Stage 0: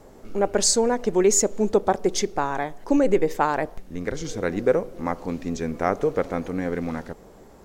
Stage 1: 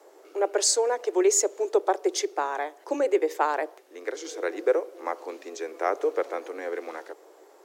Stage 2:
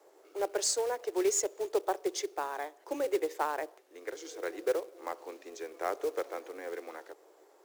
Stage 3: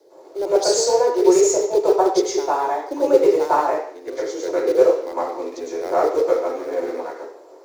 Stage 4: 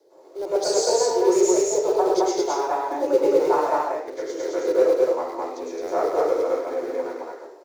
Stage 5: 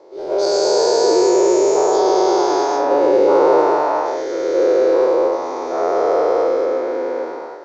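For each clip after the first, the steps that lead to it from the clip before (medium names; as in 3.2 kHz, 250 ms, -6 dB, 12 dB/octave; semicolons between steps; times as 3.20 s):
steep high-pass 320 Hz 72 dB/octave; trim -2.5 dB
short-mantissa float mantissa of 2-bit; trim -7.5 dB
reverberation RT60 0.55 s, pre-delay 101 ms, DRR -11 dB; trim -2 dB
loudspeakers at several distances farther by 43 m -10 dB, 74 m -1 dB; trim -5.5 dB
every event in the spectrogram widened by 480 ms; low-pass 5.8 kHz 24 dB/octave; trim -1 dB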